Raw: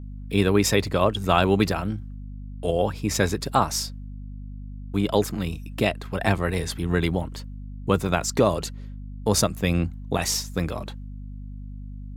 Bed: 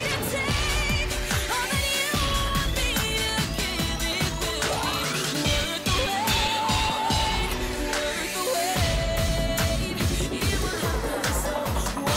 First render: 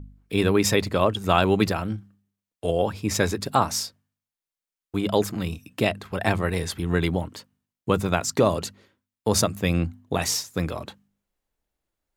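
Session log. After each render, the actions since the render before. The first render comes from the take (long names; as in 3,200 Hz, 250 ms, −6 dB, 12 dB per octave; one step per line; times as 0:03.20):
hum removal 50 Hz, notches 5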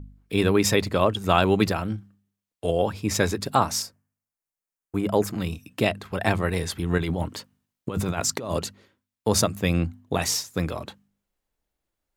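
0:03.82–0:05.27: parametric band 3,600 Hz −11.5 dB 0.79 octaves
0:06.98–0:08.59: compressor whose output falls as the input rises −27 dBFS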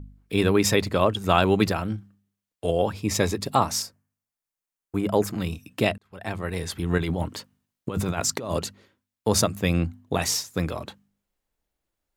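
0:03.00–0:03.67: notch filter 1,500 Hz, Q 5.5
0:05.98–0:06.86: fade in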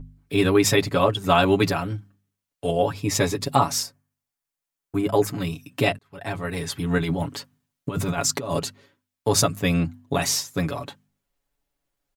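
parametric band 450 Hz −2.5 dB 0.27 octaves
comb filter 7.1 ms, depth 82%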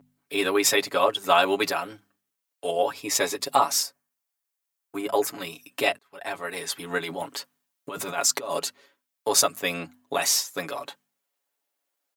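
high-pass filter 470 Hz 12 dB per octave
high-shelf EQ 9,800 Hz +5.5 dB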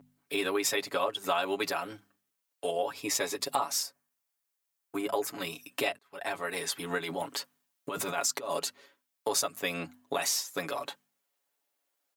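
downward compressor 2.5 to 1, threshold −30 dBFS, peak gain reduction 11 dB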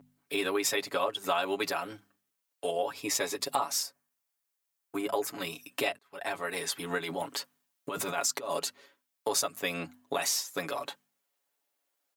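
no processing that can be heard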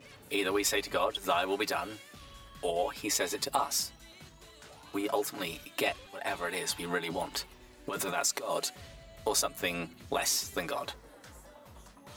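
mix in bed −26.5 dB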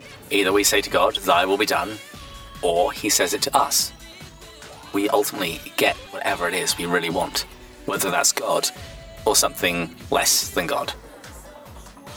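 level +11.5 dB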